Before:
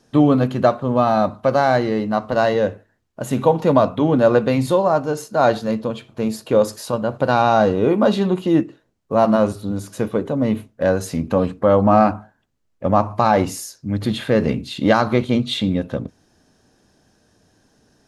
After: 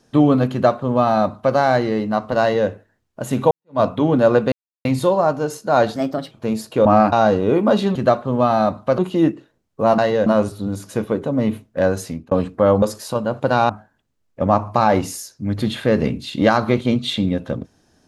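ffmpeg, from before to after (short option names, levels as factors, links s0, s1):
-filter_complex "[0:a]asplit=14[s0][s1][s2][s3][s4][s5][s6][s7][s8][s9][s10][s11][s12][s13];[s0]atrim=end=3.51,asetpts=PTS-STARTPTS,afade=t=out:st=3.506:d=0.004:c=hsin[s14];[s1]atrim=start=3.51:end=4.52,asetpts=PTS-STARTPTS,afade=t=in:d=0.29:c=exp,afade=t=out:st=1.006:d=0.004:c=hsin,apad=pad_dur=0.33[s15];[s2]atrim=start=4.52:end=5.634,asetpts=PTS-STARTPTS,afade=t=in:d=0.004:c=hsin[s16];[s3]atrim=start=5.63:end=6.06,asetpts=PTS-STARTPTS,asetrate=53802,aresample=44100,atrim=end_sample=15543,asetpts=PTS-STARTPTS[s17];[s4]atrim=start=6.056:end=6.602[s18];[s5]atrim=start=11.858:end=12.132[s19];[s6]atrim=start=7.468:end=8.302[s20];[s7]atrim=start=0.518:end=1.552[s21];[s8]atrim=start=8.298:end=9.302[s22];[s9]atrim=start=2.408:end=2.692[s23];[s10]atrim=start=9.298:end=11.35,asetpts=PTS-STARTPTS,afade=t=out:st=1.722:d=0.33[s24];[s11]atrim=start=11.35:end=11.862,asetpts=PTS-STARTPTS,afade=t=in:d=0.004:c=hsin[s25];[s12]atrim=start=6.598:end=7.472[s26];[s13]atrim=start=12.128[s27];[s14][s15][s16]concat=n=3:v=0:a=1[s28];[s28][s17]acrossfade=d=0.004:c1=hsin:c2=hsin[s29];[s29][s18]acrossfade=d=0.004:c1=hsin:c2=hsin[s30];[s30][s19]acrossfade=d=0.004:c1=hsin:c2=hsin[s31];[s31][s20]acrossfade=d=0.004:c1=hsin:c2=hsin[s32];[s32][s21]acrossfade=d=0.004:c1=hsin:c2=hsin[s33];[s33][s22]acrossfade=d=0.004:c1=hsin:c2=hsin[s34];[s34][s23]acrossfade=d=0.004:c1=hsin:c2=hsin[s35];[s24][s25]concat=n=2:v=0:a=1[s36];[s35][s36]acrossfade=d=0.004:c1=hsin:c2=hsin[s37];[s37][s26]acrossfade=d=0.004:c1=hsin:c2=hsin[s38];[s38][s27]acrossfade=d=0.004:c1=hsin:c2=hsin"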